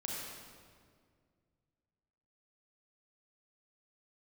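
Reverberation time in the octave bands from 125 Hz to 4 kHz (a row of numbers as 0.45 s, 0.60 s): 2.9 s, 2.5 s, 2.2 s, 1.8 s, 1.6 s, 1.4 s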